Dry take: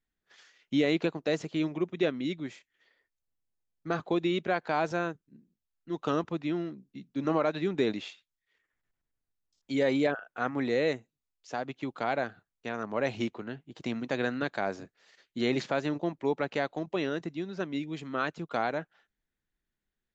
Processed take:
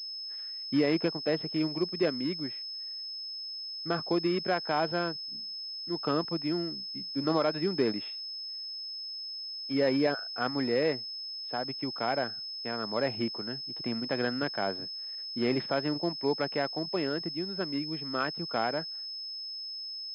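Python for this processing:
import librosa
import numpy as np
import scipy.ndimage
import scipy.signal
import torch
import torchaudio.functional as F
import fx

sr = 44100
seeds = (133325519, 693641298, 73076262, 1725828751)

y = scipy.signal.sosfilt(scipy.signal.butter(2, 60.0, 'highpass', fs=sr, output='sos'), x)
y = fx.pwm(y, sr, carrier_hz=5200.0)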